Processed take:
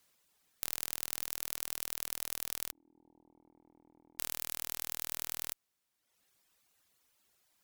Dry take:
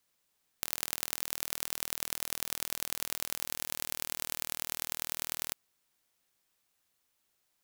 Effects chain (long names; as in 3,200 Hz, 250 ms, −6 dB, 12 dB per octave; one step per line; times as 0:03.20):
tube saturation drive 11 dB, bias 0.55
0:02.71–0:04.19: formant resonators in series u
reverb reduction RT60 1 s
level +8.5 dB